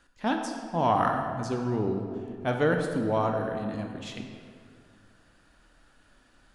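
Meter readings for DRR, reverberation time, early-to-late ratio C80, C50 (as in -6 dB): 3.0 dB, 2.2 s, 6.0 dB, 4.5 dB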